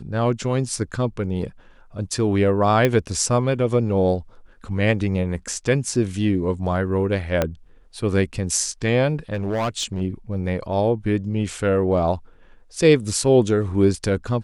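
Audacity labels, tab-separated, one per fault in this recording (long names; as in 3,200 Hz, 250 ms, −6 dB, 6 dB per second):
2.850000	2.850000	click −6 dBFS
7.420000	7.420000	click −6 dBFS
9.340000	10.020000	clipping −19 dBFS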